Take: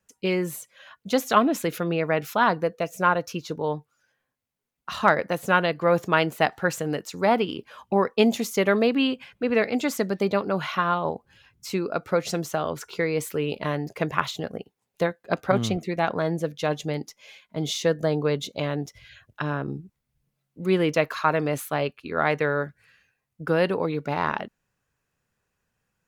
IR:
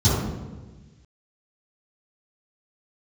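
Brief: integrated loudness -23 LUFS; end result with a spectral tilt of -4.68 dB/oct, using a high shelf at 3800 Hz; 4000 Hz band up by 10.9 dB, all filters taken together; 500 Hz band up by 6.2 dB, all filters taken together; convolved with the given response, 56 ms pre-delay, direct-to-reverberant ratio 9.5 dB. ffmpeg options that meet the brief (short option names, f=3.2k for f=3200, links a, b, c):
-filter_complex "[0:a]equalizer=f=500:t=o:g=7,highshelf=f=3.8k:g=9,equalizer=f=4k:t=o:g=8.5,asplit=2[a][b];[1:a]atrim=start_sample=2205,adelay=56[c];[b][c]afir=irnorm=-1:irlink=0,volume=-27dB[d];[a][d]amix=inputs=2:normalize=0,volume=-4dB"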